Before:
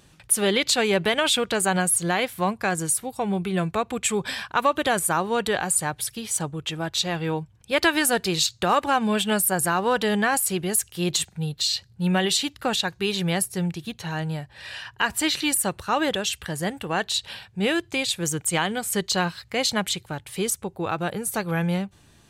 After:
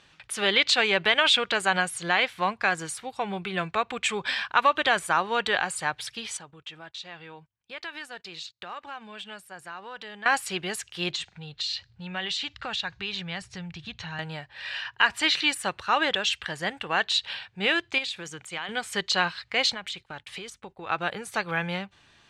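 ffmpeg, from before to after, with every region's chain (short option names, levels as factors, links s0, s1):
-filter_complex "[0:a]asettb=1/sr,asplit=3[s0][s1][s2];[s0]atrim=end=6.374[s3];[s1]atrim=start=6.37:end=10.26,asetpts=PTS-STARTPTS,afade=t=in:d=0.004:c=qsin,afade=t=out:st=3.886:d=0.004:c=qsin,acompressor=threshold=0.00631:ratio=2.5:attack=3.2:release=140:knee=1:detection=peak,agate=range=0.0562:threshold=0.00355:ratio=16:release=100:detection=peak[s4];[s2]atrim=start=10.256[s5];[s3][s4]acrossfade=d=0.004:c1=hsin:c2=qsin[s6];[s6][s5]acrossfade=d=0.004:c1=qsin:c2=hsin,asettb=1/sr,asplit=3[s7][s8][s9];[s7]atrim=end=11.134[s10];[s8]atrim=start=11.13:end=14.19,asetpts=PTS-STARTPTS,afade=t=in:d=0.004:c=qsin,afade=t=out:st=3.056:d=0.004:c=qsin,lowpass=f=7900:w=0.5412,lowpass=f=7900:w=1.3066,asubboost=boost=9:cutoff=130,acompressor=threshold=0.0316:ratio=2.5:attack=3.2:release=140:knee=1:detection=peak[s11];[s9]atrim=start=14.186[s12];[s10][s11]acrossfade=d=0.004:c1=hsin:c2=qsin[s13];[s13][s12]acrossfade=d=0.004:c1=qsin:c2=hsin,asettb=1/sr,asplit=3[s14][s15][s16];[s14]atrim=end=17.984[s17];[s15]atrim=start=17.98:end=18.69,asetpts=PTS-STARTPTS,afade=t=in:d=0.004:c=qsin,afade=t=out:st=0.706:d=0.004:c=qsin,bandreject=f=60:t=h:w=6,bandreject=f=120:t=h:w=6,bandreject=f=180:t=h:w=6,bandreject=f=240:t=h:w=6,acompressor=threshold=0.0398:ratio=12:attack=3.2:release=140:knee=1:detection=peak[s18];[s16]atrim=start=18.686[s19];[s17][s18]acrossfade=d=0.004:c1=hsin:c2=qsin[s20];[s20][s19]acrossfade=d=0.004:c1=qsin:c2=hsin,asettb=1/sr,asplit=3[s21][s22][s23];[s21]atrim=end=19.744[s24];[s22]atrim=start=19.74:end=20.9,asetpts=PTS-STARTPTS,afade=t=in:d=0.004:c=qsin,afade=t=out:st=1.156:d=0.004:c=qsin,acompressor=threshold=0.0316:ratio=12:attack=3.2:release=140:knee=1:detection=peak,aeval=exprs='val(0)+0.00141*(sin(2*PI*50*n/s)+sin(2*PI*2*50*n/s)/2+sin(2*PI*3*50*n/s)/3+sin(2*PI*4*50*n/s)/4+sin(2*PI*5*50*n/s)/5)':c=same,agate=range=0.0224:threshold=0.00794:ratio=3:release=100:detection=peak[s25];[s23]atrim=start=20.896[s26];[s24][s25]acrossfade=d=0.004:c1=hsin:c2=qsin[s27];[s27][s26]acrossfade=d=0.004:c1=qsin:c2=hsin,lowpass=3500,tiltshelf=f=680:g=-8.5,volume=0.75"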